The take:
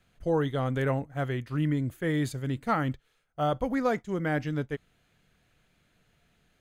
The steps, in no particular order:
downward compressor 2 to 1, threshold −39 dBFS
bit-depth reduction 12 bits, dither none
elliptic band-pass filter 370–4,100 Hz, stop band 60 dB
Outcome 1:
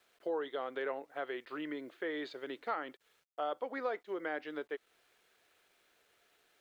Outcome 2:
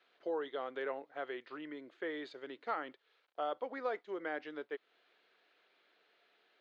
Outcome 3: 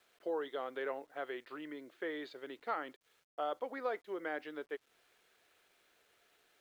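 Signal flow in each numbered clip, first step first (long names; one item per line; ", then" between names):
elliptic band-pass filter, then bit-depth reduction, then downward compressor
bit-depth reduction, then downward compressor, then elliptic band-pass filter
downward compressor, then elliptic band-pass filter, then bit-depth reduction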